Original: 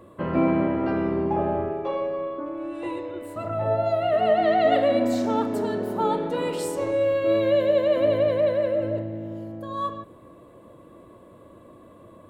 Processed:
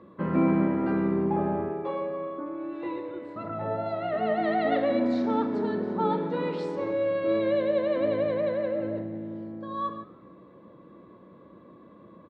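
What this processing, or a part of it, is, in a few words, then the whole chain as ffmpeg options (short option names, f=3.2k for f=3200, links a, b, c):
frequency-shifting delay pedal into a guitar cabinet: -filter_complex "[0:a]asplit=4[a][b][c][d];[b]adelay=107,afreqshift=72,volume=-22.5dB[e];[c]adelay=214,afreqshift=144,volume=-30.7dB[f];[d]adelay=321,afreqshift=216,volume=-38.9dB[g];[a][e][f][g]amix=inputs=4:normalize=0,highpass=87,equalizer=f=100:t=q:w=4:g=-8,equalizer=f=190:t=q:w=4:g=7,equalizer=f=650:t=q:w=4:g=-7,equalizer=f=2.9k:t=q:w=4:g=-8,lowpass=f=4.1k:w=0.5412,lowpass=f=4.1k:w=1.3066,volume=-2dB"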